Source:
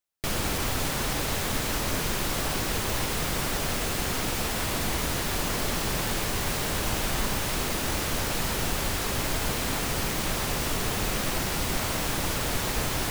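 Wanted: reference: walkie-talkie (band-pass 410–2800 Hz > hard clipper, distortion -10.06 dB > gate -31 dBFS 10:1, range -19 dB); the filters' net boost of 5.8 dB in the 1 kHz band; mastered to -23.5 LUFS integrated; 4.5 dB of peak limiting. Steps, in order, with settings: peaking EQ 1 kHz +7.5 dB; peak limiter -17.5 dBFS; band-pass 410–2800 Hz; hard clipper -31 dBFS; gate -31 dBFS 10:1, range -19 dB; trim +25 dB

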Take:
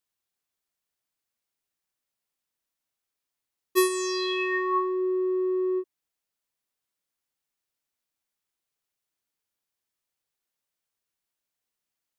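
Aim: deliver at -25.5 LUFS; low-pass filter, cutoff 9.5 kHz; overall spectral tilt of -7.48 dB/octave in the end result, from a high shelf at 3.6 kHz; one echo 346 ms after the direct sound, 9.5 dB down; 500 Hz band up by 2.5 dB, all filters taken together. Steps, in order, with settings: low-pass 9.5 kHz; peaking EQ 500 Hz +4.5 dB; treble shelf 3.6 kHz -4.5 dB; delay 346 ms -9.5 dB; trim -2.5 dB

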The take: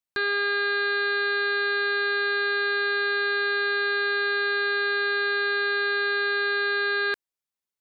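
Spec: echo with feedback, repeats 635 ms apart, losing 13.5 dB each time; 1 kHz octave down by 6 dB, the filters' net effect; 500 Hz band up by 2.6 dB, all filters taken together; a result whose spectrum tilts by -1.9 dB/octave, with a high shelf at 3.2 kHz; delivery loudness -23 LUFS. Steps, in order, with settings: peaking EQ 500 Hz +5 dB; peaking EQ 1 kHz -8.5 dB; treble shelf 3.2 kHz -3 dB; feedback delay 635 ms, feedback 21%, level -13.5 dB; trim +2.5 dB

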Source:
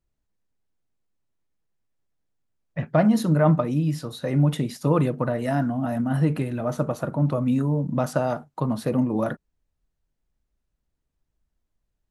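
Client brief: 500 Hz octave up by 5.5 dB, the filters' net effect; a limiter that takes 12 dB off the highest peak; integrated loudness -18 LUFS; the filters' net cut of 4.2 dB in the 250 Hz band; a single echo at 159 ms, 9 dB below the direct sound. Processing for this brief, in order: peaking EQ 250 Hz -8 dB; peaking EQ 500 Hz +8.5 dB; peak limiter -17 dBFS; delay 159 ms -9 dB; trim +8.5 dB

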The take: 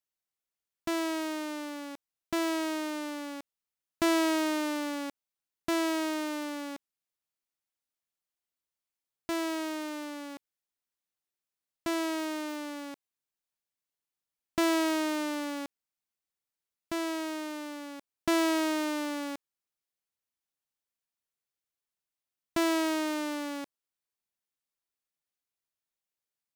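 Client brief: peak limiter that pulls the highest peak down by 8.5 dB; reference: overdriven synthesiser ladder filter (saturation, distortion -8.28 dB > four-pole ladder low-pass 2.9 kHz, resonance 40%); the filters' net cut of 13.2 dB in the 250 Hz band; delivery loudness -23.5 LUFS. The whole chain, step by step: peaking EQ 250 Hz -7.5 dB; peak limiter -25 dBFS; saturation -37 dBFS; four-pole ladder low-pass 2.9 kHz, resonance 40%; trim +27.5 dB

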